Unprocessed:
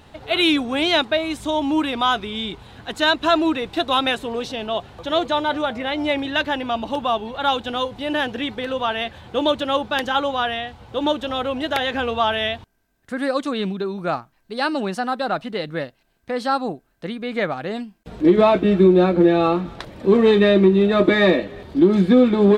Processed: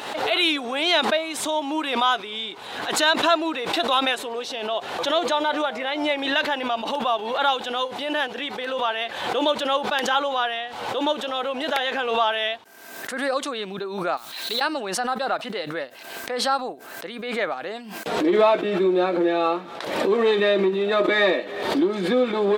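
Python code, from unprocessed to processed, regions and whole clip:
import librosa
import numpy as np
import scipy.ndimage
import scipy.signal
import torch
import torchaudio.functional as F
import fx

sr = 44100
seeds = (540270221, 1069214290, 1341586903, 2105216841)

y = fx.chain(x, sr, fx.ladder_lowpass(hz=4200.0, resonance_pct=75),
    fx.mod_noise(seeds[0], snr_db=15),
    fx.band_squash(depth_pct=100), at=(14.17, 14.61))
y = scipy.signal.sosfilt(scipy.signal.butter(2, 450.0, 'highpass', fs=sr, output='sos'), y)
y = fx.pre_swell(y, sr, db_per_s=50.0)
y = F.gain(torch.from_numpy(y), -1.5).numpy()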